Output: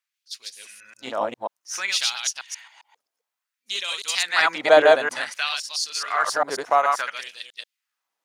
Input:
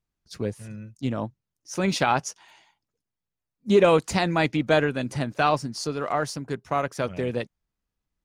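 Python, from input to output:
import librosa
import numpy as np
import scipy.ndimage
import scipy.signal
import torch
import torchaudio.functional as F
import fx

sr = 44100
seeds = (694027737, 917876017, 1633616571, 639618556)

y = fx.reverse_delay(x, sr, ms=134, wet_db=-1)
y = fx.dynamic_eq(y, sr, hz=2500.0, q=3.2, threshold_db=-45.0, ratio=4.0, max_db=-4)
y = fx.filter_lfo_highpass(y, sr, shape='sine', hz=0.57, low_hz=620.0, high_hz=3700.0, q=1.6)
y = y * 10.0 ** (4.5 / 20.0)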